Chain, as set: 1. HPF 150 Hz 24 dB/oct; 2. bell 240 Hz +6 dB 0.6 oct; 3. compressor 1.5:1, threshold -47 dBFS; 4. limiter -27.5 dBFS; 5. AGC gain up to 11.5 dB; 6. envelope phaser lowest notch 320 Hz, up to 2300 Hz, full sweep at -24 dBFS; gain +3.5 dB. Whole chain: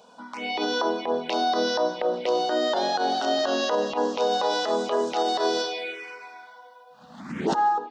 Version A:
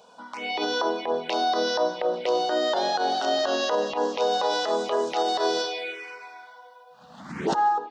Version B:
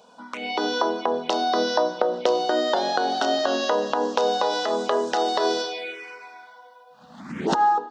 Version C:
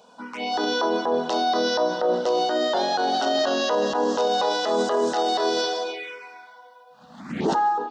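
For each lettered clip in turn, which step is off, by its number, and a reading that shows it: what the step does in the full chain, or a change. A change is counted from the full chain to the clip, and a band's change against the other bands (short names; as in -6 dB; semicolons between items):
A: 2, 250 Hz band -3.0 dB; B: 4, crest factor change +7.0 dB; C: 3, mean gain reduction 6.5 dB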